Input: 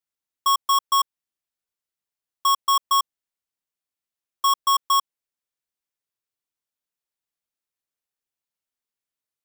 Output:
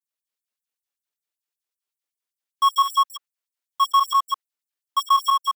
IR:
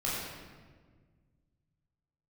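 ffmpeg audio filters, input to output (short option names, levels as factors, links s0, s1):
-filter_complex "[0:a]areverse,adynamicequalizer=threshold=0.0224:dfrequency=1500:dqfactor=1:tfrequency=1500:tqfactor=1:attack=5:release=100:ratio=0.375:range=3:mode=boostabove:tftype=bell,acrossover=split=460|2100|2900[s0][s1][s2][s3];[s2]crystalizer=i=2.5:c=0[s4];[s3]alimiter=level_in=1.58:limit=0.0631:level=0:latency=1:release=46,volume=0.631[s5];[s0][s1][s4][s5]amix=inputs=4:normalize=0,atempo=1.7,aecho=1:1:61.22|207:0.316|0.631,afftfilt=real='re*gte(b*sr/1024,200*pow(7700/200,0.5+0.5*sin(2*PI*5.2*pts/sr)))':imag='im*gte(b*sr/1024,200*pow(7700/200,0.5+0.5*sin(2*PI*5.2*pts/sr)))':win_size=1024:overlap=0.75"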